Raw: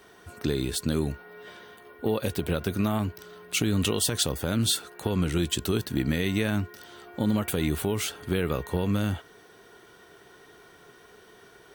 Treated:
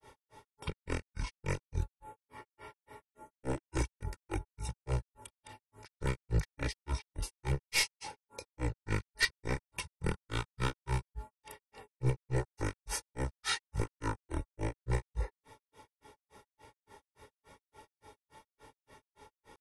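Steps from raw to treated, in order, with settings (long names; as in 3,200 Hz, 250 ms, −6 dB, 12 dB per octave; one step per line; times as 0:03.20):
wavefolder on the positive side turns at −21.5 dBFS
comb filter 1.3 ms, depth 92%
change of speed 0.599×
granular cloud 169 ms, grains 3.5 per second, pitch spread up and down by 0 semitones
level −3 dB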